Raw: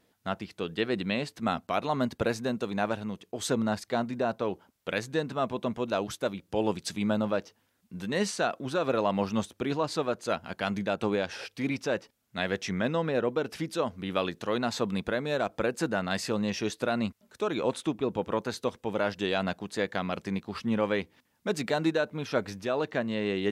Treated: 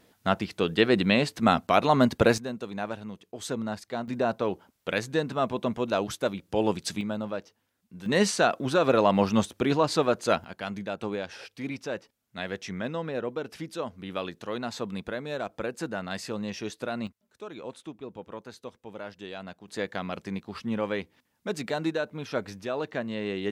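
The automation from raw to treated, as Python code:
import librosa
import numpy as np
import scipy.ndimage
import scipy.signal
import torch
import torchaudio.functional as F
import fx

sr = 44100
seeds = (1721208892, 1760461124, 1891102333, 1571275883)

y = fx.gain(x, sr, db=fx.steps((0.0, 7.5), (2.38, -4.0), (4.08, 2.5), (7.01, -4.5), (8.06, 5.5), (10.44, -4.0), (17.07, -11.0), (19.68, -2.0)))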